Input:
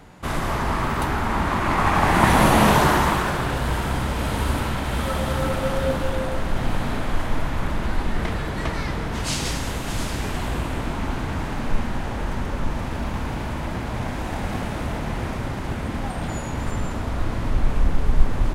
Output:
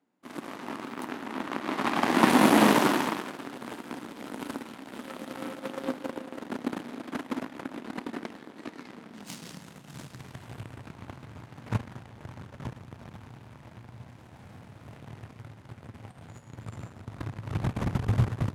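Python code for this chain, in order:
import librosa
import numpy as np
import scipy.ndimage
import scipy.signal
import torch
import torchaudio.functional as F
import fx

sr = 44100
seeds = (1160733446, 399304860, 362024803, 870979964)

y = fx.overload_stage(x, sr, gain_db=20.5, at=(13.9, 14.87))
y = fx.cheby_harmonics(y, sr, harmonics=(5, 7), levels_db=(-44, -17), full_scale_db=-2.0)
y = fx.filter_sweep_highpass(y, sr, from_hz=260.0, to_hz=110.0, start_s=8.79, end_s=10.47, q=3.3)
y = F.gain(torch.from_numpy(y), -4.5).numpy()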